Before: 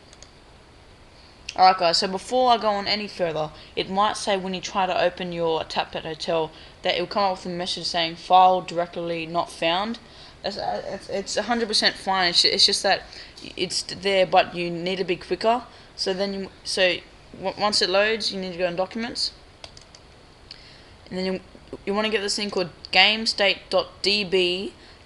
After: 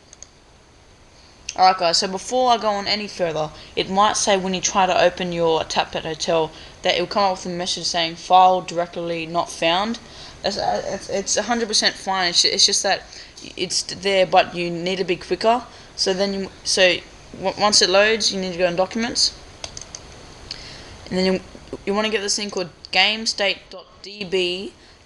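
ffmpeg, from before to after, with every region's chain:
-filter_complex "[0:a]asettb=1/sr,asplit=3[s0][s1][s2];[s0]atrim=end=23.664[s3];[s1]atrim=start=23.66:end=24.21,asetpts=PTS-STARTPTS,afade=t=in:d=0.004:c=qsin,afade=t=out:st=0.546:d=0.004:c=qsin,lowpass=6500,aecho=1:1:4.7:0.34,atrim=end_sample=24255,acompressor=threshold=0.00891:ratio=2.5:attack=3.2:release=140:knee=1:detection=peak[s4];[s2]atrim=start=24.206[s5];[s3][s4]acrossfade=d=0.004:c1=hsin:c2=qsin[s6];[s6][s5]acrossfade=d=0.004:c1=qsin:c2=hsin,equalizer=f=6300:w=6.3:g=14,dynaudnorm=f=470:g=5:m=3.76,volume=0.891"

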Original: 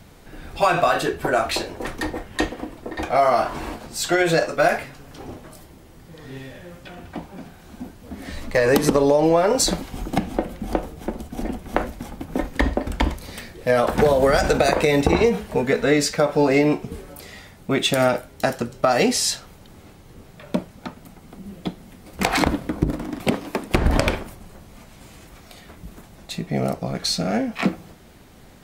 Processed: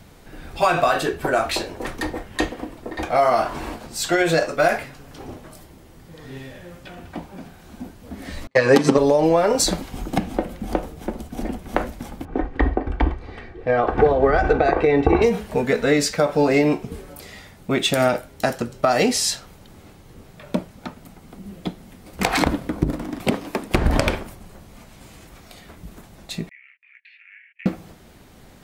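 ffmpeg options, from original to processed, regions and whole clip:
-filter_complex "[0:a]asettb=1/sr,asplit=3[s0][s1][s2];[s0]atrim=end=8.474[s3];[s1]atrim=start=8.47:end=8.98,asetpts=PTS-STARTPTS,afade=t=in:d=0.004:c=qsin,afade=t=out:st=0.506:d=0.004:c=qsin,agate=range=0.02:threshold=0.0708:ratio=16:release=100:detection=peak,highpass=120,lowpass=6400,aecho=1:1:7.5:0.84,atrim=end_sample=22491[s4];[s2]atrim=start=8.976[s5];[s3][s4]acrossfade=d=0.004:c1=hsin:c2=qsin[s6];[s6][s5]acrossfade=d=0.004:c1=qsin:c2=hsin,asettb=1/sr,asplit=3[s7][s8][s9];[s7]atrim=end=12.254[s10];[s8]atrim=start=12.25:end=15.22,asetpts=PTS-STARTPTS,afade=t=in:d=0.004:c=qsin,afade=t=out:st=2.966:d=0.004:c=qsin,lowpass=1900,aecho=1:1:2.6:0.53,atrim=end_sample=130977[s11];[s9]atrim=start=15.216[s12];[s10][s11]acrossfade=d=0.004:c1=hsin:c2=qsin[s13];[s13][s12]acrossfade=d=0.004:c1=qsin:c2=hsin,asettb=1/sr,asplit=3[s14][s15][s16];[s14]atrim=end=26.494[s17];[s15]atrim=start=26.49:end=27.66,asetpts=PTS-STARTPTS,afade=t=in:d=0.004:c=qsin,afade=t=out:st=1.166:d=0.004:c=qsin,agate=range=0.0355:threshold=0.0282:ratio=16:release=100:detection=peak,asuperpass=centerf=2200:order=8:qfactor=2.1,acompressor=threshold=0.00447:ratio=2:attack=3.2:release=140:knee=1:detection=peak[s18];[s16]atrim=start=27.656[s19];[s17][s18]acrossfade=d=0.004:c1=hsin:c2=qsin[s20];[s20][s19]acrossfade=d=0.004:c1=qsin:c2=hsin"

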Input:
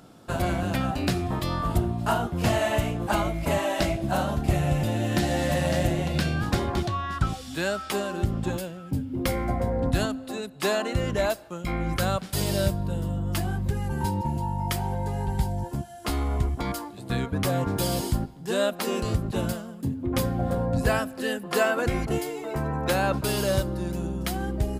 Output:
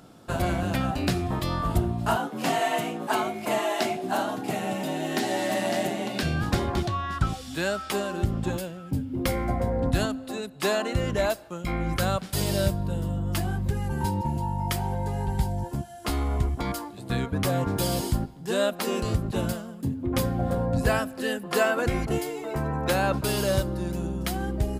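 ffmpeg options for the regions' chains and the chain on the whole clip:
-filter_complex "[0:a]asettb=1/sr,asplit=3[s0][s1][s2];[s0]atrim=end=2.164[s3];[s1]atrim=start=2.16:end=6.23,asetpts=PTS-STARTPTS,afade=t=in:d=0.004:c=qsin,afade=t=out:st=4.066:d=0.004:c=qsin,highpass=190,bandreject=f=50:t=h:w=6,bandreject=f=100:t=h:w=6,bandreject=f=150:t=h:w=6,bandreject=f=200:t=h:w=6,bandreject=f=250:t=h:w=6,bandreject=f=300:t=h:w=6,bandreject=f=350:t=h:w=6,bandreject=f=400:t=h:w=6,bandreject=f=450:t=h:w=6,bandreject=f=500:t=h:w=6,afreqshift=47[s4];[s2]atrim=start=6.226[s5];[s3][s4]acrossfade=d=0.004:c1=hsin:c2=qsin[s6];[s6][s5]acrossfade=d=0.004:c1=qsin:c2=hsin"

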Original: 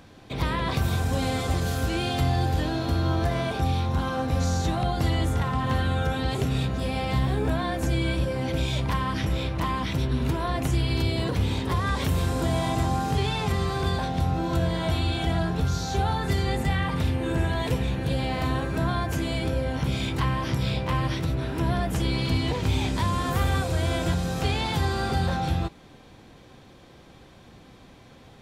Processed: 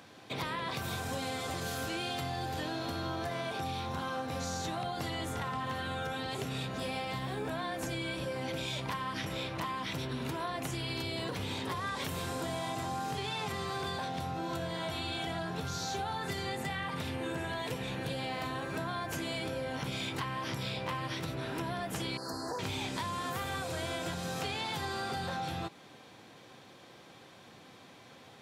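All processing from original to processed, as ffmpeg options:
-filter_complex "[0:a]asettb=1/sr,asplit=3[s0][s1][s2];[s0]atrim=end=22.174[s3];[s1]atrim=start=22.17:end=22.59,asetpts=PTS-STARTPTS,afade=t=in:d=0.004:c=qsin,afade=t=out:st=0.416:d=0.004:c=qsin,asuperstop=centerf=2800:order=12:qfactor=0.98,equalizer=f=120:w=0.61:g=-14.5[s4];[s2]atrim=start=22.586[s5];[s3][s4]acrossfade=d=0.004:c1=hsin:c2=qsin[s6];[s6][s5]acrossfade=d=0.004:c1=qsin:c2=hsin,highpass=f=95:w=0.5412,highpass=f=95:w=1.3066,lowshelf=f=350:g=-9.5,acompressor=threshold=0.0224:ratio=6"

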